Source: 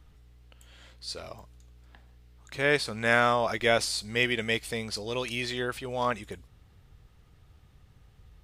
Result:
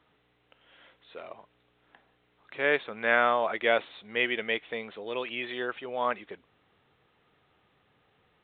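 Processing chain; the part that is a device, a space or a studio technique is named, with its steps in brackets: telephone (BPF 310–3200 Hz; A-law 64 kbps 8000 Hz)

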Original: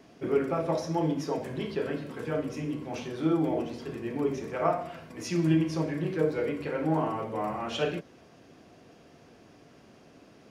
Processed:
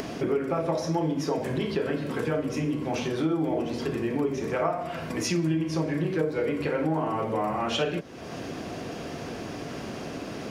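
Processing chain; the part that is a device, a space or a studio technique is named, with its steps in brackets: upward and downward compression (upward compressor, threshold -28 dBFS; compressor 6:1, threshold -28 dBFS, peak gain reduction 8.5 dB); gain +5.5 dB

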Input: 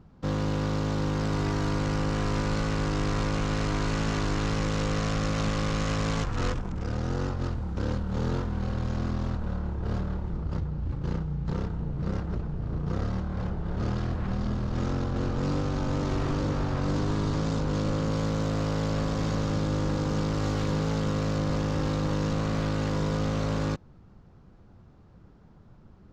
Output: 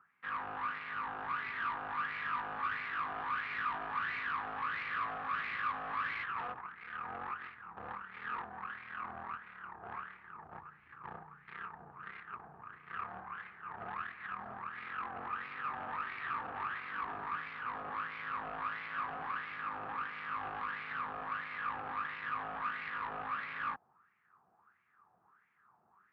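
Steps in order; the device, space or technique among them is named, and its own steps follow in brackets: wah-wah guitar rig (wah 1.5 Hz 710–2200 Hz, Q 6; tube stage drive 44 dB, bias 0.75; speaker cabinet 81–3600 Hz, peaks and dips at 290 Hz -5 dB, 560 Hz -10 dB, 1200 Hz +9 dB, 1700 Hz +7 dB, 2500 Hz +4 dB); gain +7 dB

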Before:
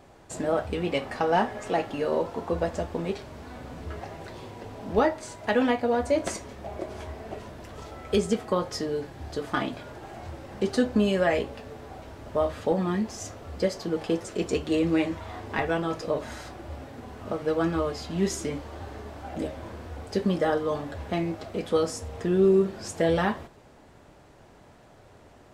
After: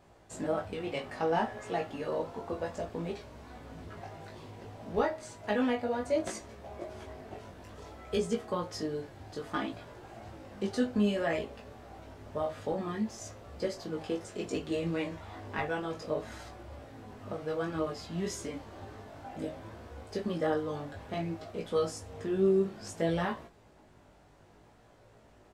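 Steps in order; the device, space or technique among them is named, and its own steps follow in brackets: double-tracked vocal (doubler 19 ms -11 dB; chorus 0.6 Hz, delay 17 ms, depth 3.4 ms); gain -4 dB

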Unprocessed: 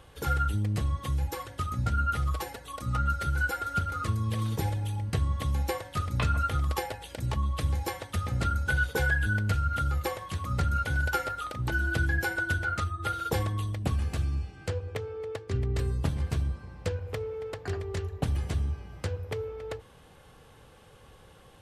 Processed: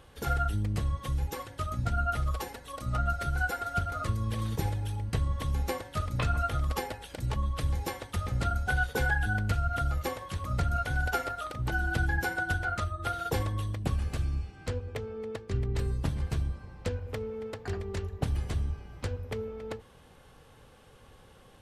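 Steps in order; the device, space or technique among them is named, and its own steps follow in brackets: octave pedal (harmoniser -12 st -8 dB); gain -2 dB

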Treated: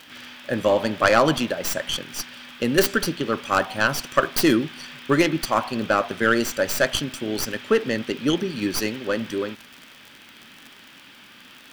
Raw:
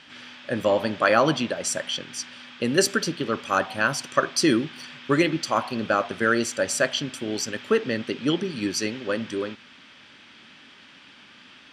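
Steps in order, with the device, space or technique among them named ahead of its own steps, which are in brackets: record under a worn stylus (tracing distortion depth 0.16 ms; crackle 53/s -33 dBFS; white noise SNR 38 dB); gain +2 dB

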